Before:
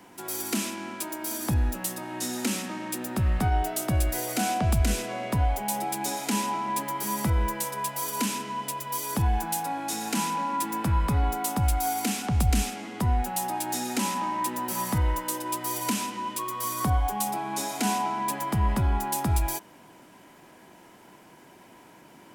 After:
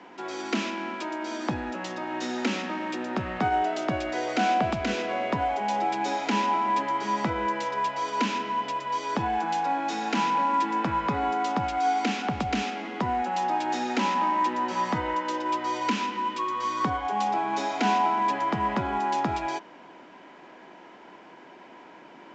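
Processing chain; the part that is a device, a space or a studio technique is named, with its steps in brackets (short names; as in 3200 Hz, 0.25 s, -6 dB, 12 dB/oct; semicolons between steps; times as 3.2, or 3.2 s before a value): 15.86–17.11 bell 670 Hz -12 dB 0.25 oct; telephone (BPF 270–3200 Hz; gain +5 dB; µ-law 128 kbps 16000 Hz)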